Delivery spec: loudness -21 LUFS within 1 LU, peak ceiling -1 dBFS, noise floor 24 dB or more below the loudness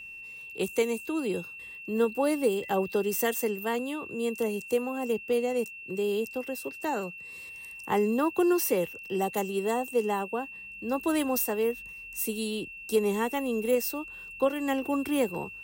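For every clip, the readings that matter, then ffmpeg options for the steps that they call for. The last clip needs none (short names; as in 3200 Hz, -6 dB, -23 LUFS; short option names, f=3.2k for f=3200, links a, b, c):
steady tone 2700 Hz; tone level -41 dBFS; loudness -29.5 LUFS; peak -15.0 dBFS; loudness target -21.0 LUFS
-> -af "bandreject=f=2.7k:w=30"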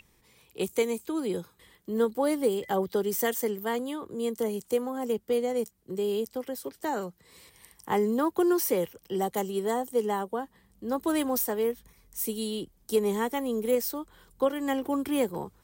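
steady tone none; loudness -29.5 LUFS; peak -15.0 dBFS; loudness target -21.0 LUFS
-> -af "volume=8.5dB"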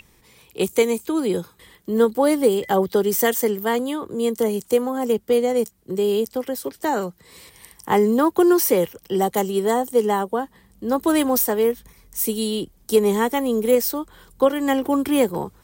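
loudness -21.0 LUFS; peak -6.5 dBFS; noise floor -57 dBFS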